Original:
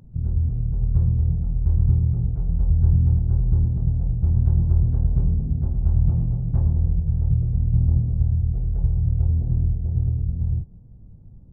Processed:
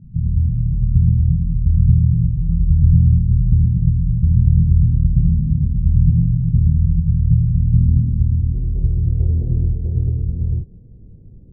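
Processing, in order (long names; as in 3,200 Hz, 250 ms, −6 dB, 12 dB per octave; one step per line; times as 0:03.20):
low-pass filter sweep 180 Hz → 430 Hz, 0:07.56–0:09.33
level +3 dB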